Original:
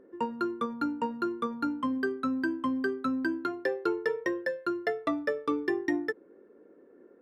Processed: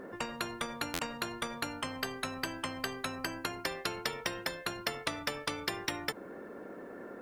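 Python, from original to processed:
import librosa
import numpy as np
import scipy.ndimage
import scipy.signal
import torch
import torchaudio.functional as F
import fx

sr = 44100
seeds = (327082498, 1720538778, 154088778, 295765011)

y = fx.peak_eq(x, sr, hz=3600.0, db=fx.line((3.14, -8.0), (3.66, -14.5)), octaves=0.33, at=(3.14, 3.66), fade=0.02)
y = fx.buffer_glitch(y, sr, at_s=(0.93,), block=512, repeats=4)
y = fx.spectral_comp(y, sr, ratio=4.0)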